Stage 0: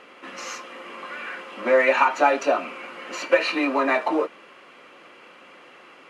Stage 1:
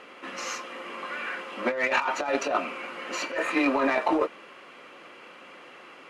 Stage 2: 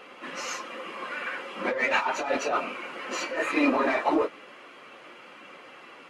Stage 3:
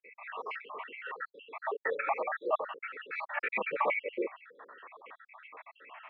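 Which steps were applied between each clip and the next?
Chebyshev shaper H 7 -27 dB, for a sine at -4.5 dBFS; compressor with a negative ratio -25 dBFS, ratio -1; spectral replace 3.35–3.57 s, 1.9–6.4 kHz both
phase randomisation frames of 50 ms
random holes in the spectrogram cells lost 71%; mistuned SSB -91 Hz 590–2800 Hz; trim +2 dB

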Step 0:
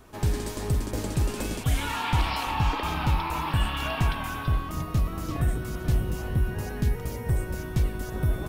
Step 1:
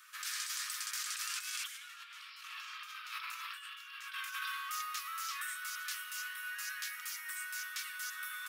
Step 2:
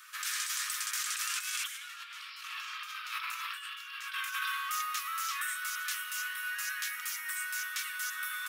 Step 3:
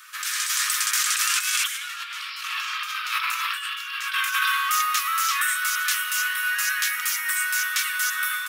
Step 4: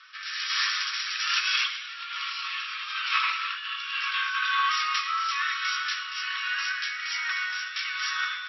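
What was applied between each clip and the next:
steep high-pass 1.2 kHz 72 dB/octave; dynamic bell 5.5 kHz, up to +4 dB, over -52 dBFS, Q 1.8; compressor with a negative ratio -40 dBFS, ratio -0.5; trim -1 dB
dynamic bell 4.7 kHz, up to -4 dB, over -54 dBFS, Q 3; trim +5.5 dB
level rider gain up to 5.5 dB; trim +6.5 dB
rotary cabinet horn 1.2 Hz; on a send at -4 dB: reverberation RT60 1.0 s, pre-delay 3 ms; on the sum: MP3 24 kbps 16 kHz

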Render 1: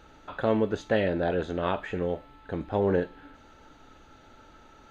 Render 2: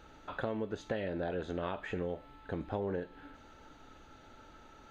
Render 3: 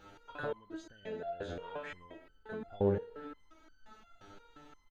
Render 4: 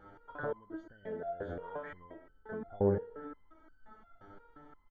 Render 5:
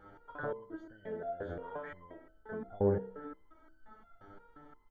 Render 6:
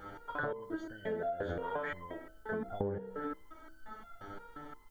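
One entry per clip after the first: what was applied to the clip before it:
compression 6:1, threshold -30 dBFS, peak gain reduction 11 dB; trim -2.5 dB
feedback delay 122 ms, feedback 54%, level -13.5 dB; resonator arpeggio 5.7 Hz 100–1500 Hz; trim +10 dB
Savitzky-Golay filter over 41 samples; trim +1 dB
de-hum 64.26 Hz, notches 14
treble shelf 2.6 kHz +10.5 dB; compression 20:1, threshold -39 dBFS, peak gain reduction 16.5 dB; trim +7 dB

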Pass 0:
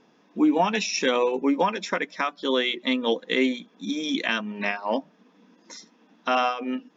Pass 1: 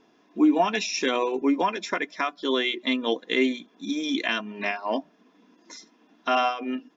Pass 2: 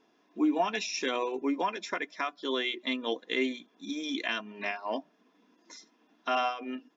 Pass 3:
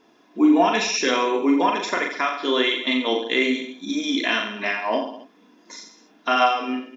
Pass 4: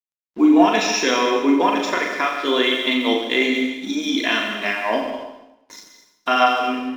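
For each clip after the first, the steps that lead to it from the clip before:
comb 2.9 ms, depth 44%; trim -1.5 dB
bass shelf 150 Hz -9.5 dB; trim -5.5 dB
reverse bouncing-ball echo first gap 40 ms, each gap 1.15×, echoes 5; trim +8.5 dB
crossover distortion -46 dBFS; plate-style reverb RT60 0.86 s, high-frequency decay 0.95×, pre-delay 110 ms, DRR 6.5 dB; trim +2 dB

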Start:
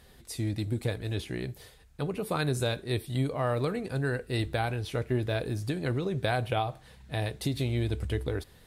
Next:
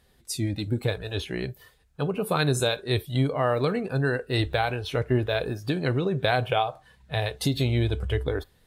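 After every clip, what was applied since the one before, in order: spectral noise reduction 12 dB; dynamic bell 6.4 kHz, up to +4 dB, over -51 dBFS, Q 0.82; trim +5.5 dB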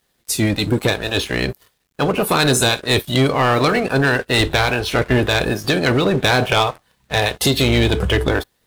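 spectral peaks clipped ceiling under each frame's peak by 14 dB; waveshaping leveller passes 3; bit crusher 11-bit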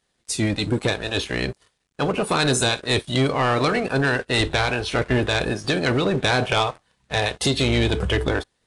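resampled via 22.05 kHz; trim -4.5 dB

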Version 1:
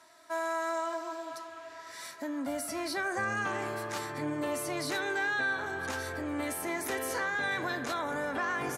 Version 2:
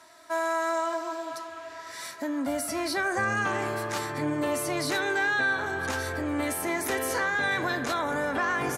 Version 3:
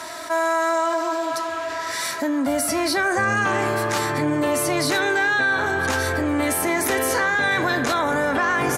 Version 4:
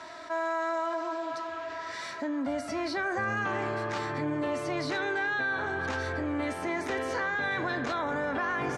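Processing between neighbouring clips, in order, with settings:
bass shelf 67 Hz +6.5 dB; trim +5 dB
level flattener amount 50%; trim +5 dB
distance through air 130 m; trim -9 dB

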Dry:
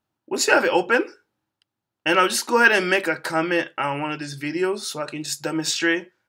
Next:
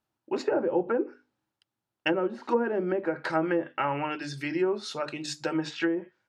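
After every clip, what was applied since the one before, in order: low-pass that closes with the level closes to 500 Hz, closed at -16 dBFS; hum notches 50/100/150/200/250/300 Hz; trim -3 dB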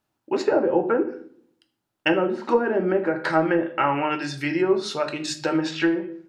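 reverberation RT60 0.60 s, pre-delay 7 ms, DRR 7 dB; trim +5.5 dB

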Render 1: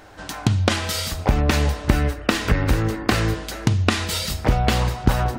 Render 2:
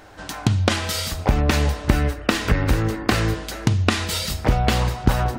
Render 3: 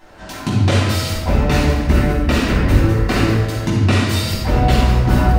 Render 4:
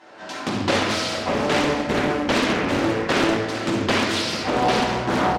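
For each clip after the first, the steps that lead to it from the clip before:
no audible change
reverberation RT60 1.1 s, pre-delay 3 ms, DRR -9.5 dB; trim -9.5 dB
band-pass 280–6500 Hz; delay 454 ms -12.5 dB; loudspeaker Doppler distortion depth 0.72 ms

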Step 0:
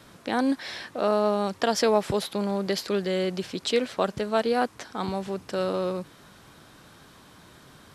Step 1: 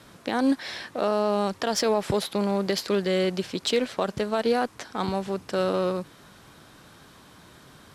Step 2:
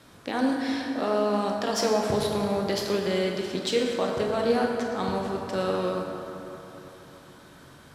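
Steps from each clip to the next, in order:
peak limiter -16 dBFS, peak gain reduction 7.5 dB; Chebyshev shaper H 7 -31 dB, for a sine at -16 dBFS; trim +2.5 dB
reverberation RT60 3.5 s, pre-delay 18 ms, DRR -0.5 dB; trim -3.5 dB

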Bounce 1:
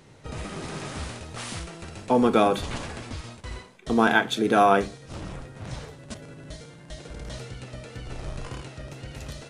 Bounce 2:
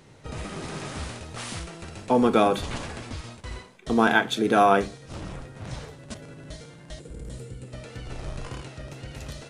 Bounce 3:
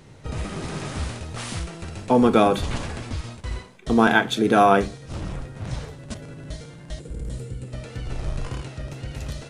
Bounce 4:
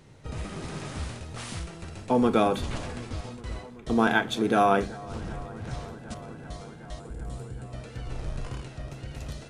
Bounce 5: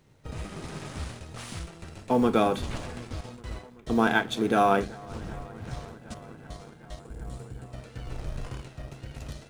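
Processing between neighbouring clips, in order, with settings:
time-frequency box 7.00–7.73 s, 550–6800 Hz -10 dB
bass shelf 160 Hz +6.5 dB; trim +2 dB
feedback echo behind a low-pass 381 ms, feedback 85%, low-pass 1.8 kHz, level -21 dB; trim -5.5 dB
companding laws mixed up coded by A

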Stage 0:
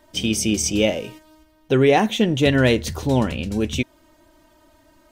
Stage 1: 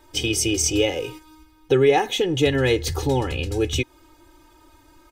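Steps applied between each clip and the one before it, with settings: compression 2:1, threshold -21 dBFS, peak gain reduction 6 dB; comb 2.4 ms, depth 97%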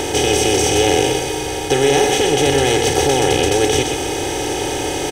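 spectral levelling over time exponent 0.2; on a send: delay 123 ms -7 dB; on the sum: trim -3.5 dB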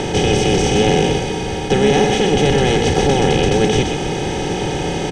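octave divider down 1 oct, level +2 dB; distance through air 88 m

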